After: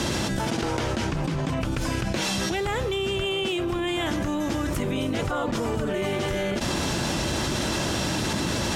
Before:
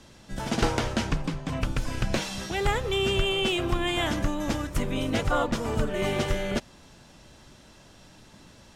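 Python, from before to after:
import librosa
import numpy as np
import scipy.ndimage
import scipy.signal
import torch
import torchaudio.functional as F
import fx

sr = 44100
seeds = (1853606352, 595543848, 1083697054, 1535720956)

y = scipy.signal.sosfilt(scipy.signal.butter(2, 55.0, 'highpass', fs=sr, output='sos'), x)
y = fx.peak_eq(y, sr, hz=340.0, db=5.0, octaves=0.3)
y = fx.env_flatten(y, sr, amount_pct=100)
y = F.gain(torch.from_numpy(y), -6.5).numpy()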